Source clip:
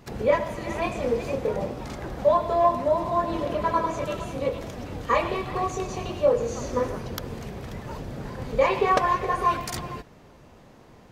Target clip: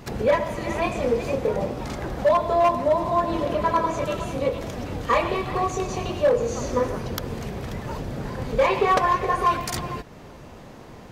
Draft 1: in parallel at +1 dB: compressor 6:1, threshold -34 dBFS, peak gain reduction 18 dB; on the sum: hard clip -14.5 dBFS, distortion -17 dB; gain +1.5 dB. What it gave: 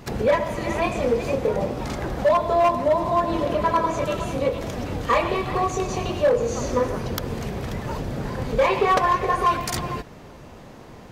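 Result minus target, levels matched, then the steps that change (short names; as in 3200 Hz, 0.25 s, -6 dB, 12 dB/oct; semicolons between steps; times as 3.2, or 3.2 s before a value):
compressor: peak gain reduction -6.5 dB
change: compressor 6:1, threshold -42 dBFS, peak gain reduction 25 dB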